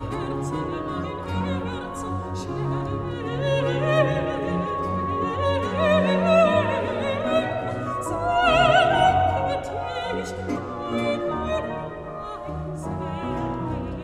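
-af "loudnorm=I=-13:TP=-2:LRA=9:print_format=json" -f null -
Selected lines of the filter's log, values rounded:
"input_i" : "-24.6",
"input_tp" : "-6.2",
"input_lra" : "8.0",
"input_thresh" : "-34.6",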